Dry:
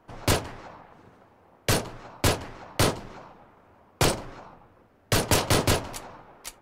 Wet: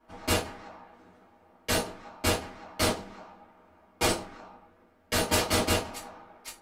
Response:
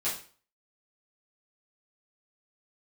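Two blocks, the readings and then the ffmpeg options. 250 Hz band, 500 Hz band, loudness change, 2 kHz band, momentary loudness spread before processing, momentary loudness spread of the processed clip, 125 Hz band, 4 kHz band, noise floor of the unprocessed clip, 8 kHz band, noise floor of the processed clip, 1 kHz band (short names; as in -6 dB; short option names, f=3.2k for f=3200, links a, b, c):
-2.5 dB, -2.5 dB, -3.0 dB, -1.5 dB, 19 LU, 20 LU, -7.5 dB, -2.0 dB, -60 dBFS, -2.5 dB, -62 dBFS, -2.5 dB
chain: -filter_complex "[1:a]atrim=start_sample=2205,asetrate=83790,aresample=44100[a];[0:a][a]afir=irnorm=-1:irlink=0,volume=-2.5dB"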